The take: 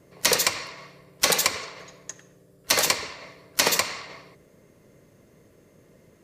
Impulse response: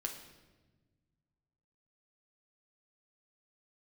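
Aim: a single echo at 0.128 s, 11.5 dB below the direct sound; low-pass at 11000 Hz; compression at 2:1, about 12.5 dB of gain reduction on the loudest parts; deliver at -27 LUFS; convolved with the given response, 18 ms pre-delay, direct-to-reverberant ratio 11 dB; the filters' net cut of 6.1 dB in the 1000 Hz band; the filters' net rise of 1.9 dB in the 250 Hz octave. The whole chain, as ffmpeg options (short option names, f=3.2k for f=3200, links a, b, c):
-filter_complex "[0:a]lowpass=11k,equalizer=f=250:t=o:g=3,equalizer=f=1k:t=o:g=-7.5,acompressor=threshold=-42dB:ratio=2,aecho=1:1:128:0.266,asplit=2[a][b];[1:a]atrim=start_sample=2205,adelay=18[c];[b][c]afir=irnorm=-1:irlink=0,volume=-11dB[d];[a][d]amix=inputs=2:normalize=0,volume=10dB"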